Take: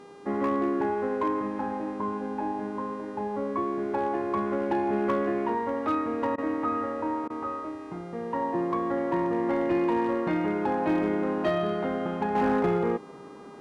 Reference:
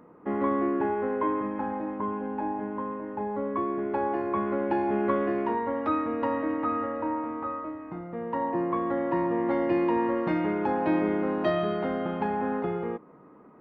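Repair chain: clip repair -19 dBFS; de-hum 402.6 Hz, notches 26; interpolate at 6.36/7.28, 19 ms; gain 0 dB, from 12.35 s -6 dB

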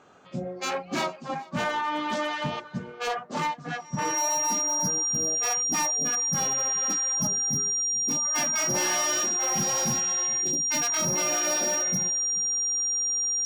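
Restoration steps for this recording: clip repair -21.5 dBFS; notch 5700 Hz, Q 30; inverse comb 0.429 s -22.5 dB

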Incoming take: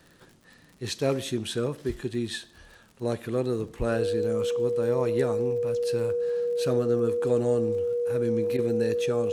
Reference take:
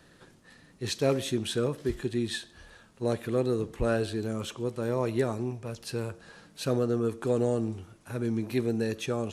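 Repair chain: de-click; notch 480 Hz, Q 30; interpolate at 8.57, 13 ms

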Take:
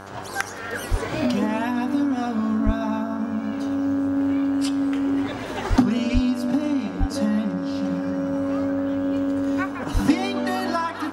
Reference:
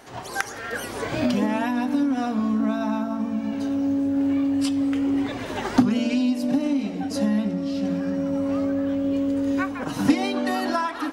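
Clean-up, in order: de-hum 97.6 Hz, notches 17; de-plosive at 0.9/2.65/5.69/6.13/6.99/9.93

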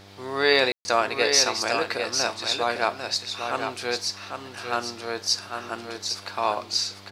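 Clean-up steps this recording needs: de-hum 98.5 Hz, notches 9; room tone fill 0.72–0.85; inverse comb 0.799 s -6.5 dB

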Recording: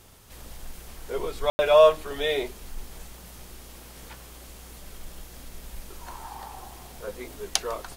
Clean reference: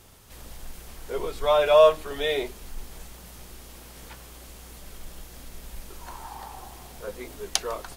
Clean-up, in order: room tone fill 1.5–1.59

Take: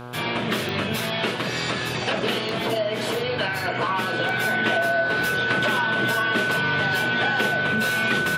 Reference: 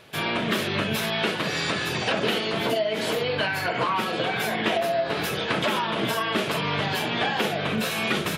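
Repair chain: de-click; de-hum 122.3 Hz, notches 13; notch 1500 Hz, Q 30

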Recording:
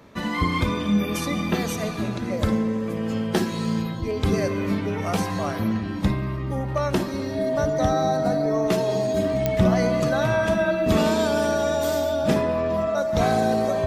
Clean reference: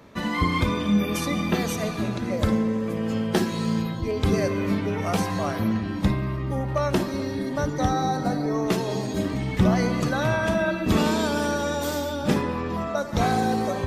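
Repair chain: de-click; notch 640 Hz, Q 30

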